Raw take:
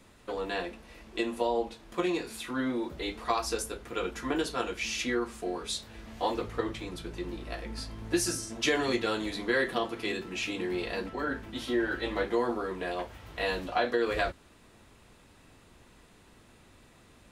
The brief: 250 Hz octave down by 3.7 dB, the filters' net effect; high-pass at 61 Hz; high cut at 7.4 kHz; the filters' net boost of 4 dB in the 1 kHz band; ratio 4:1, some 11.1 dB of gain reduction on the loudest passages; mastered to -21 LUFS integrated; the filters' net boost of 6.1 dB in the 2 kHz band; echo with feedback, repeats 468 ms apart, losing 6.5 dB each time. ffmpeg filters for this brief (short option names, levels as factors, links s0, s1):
-af "highpass=61,lowpass=7400,equalizer=f=250:t=o:g=-6,equalizer=f=1000:t=o:g=4,equalizer=f=2000:t=o:g=6.5,acompressor=threshold=0.0224:ratio=4,aecho=1:1:468|936|1404|1872|2340|2808:0.473|0.222|0.105|0.0491|0.0231|0.0109,volume=5.31"